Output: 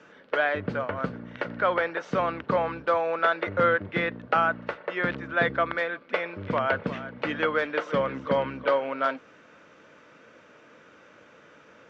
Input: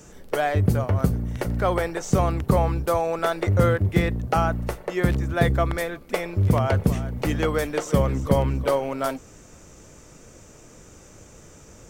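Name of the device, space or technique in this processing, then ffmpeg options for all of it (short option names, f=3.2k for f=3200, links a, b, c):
phone earpiece: -af "highpass=340,equalizer=f=380:t=q:w=4:g=-8,equalizer=f=760:t=q:w=4:g=-7,equalizer=f=1.5k:t=q:w=4:g=6,lowpass=f=3.5k:w=0.5412,lowpass=f=3.5k:w=1.3066,volume=1dB"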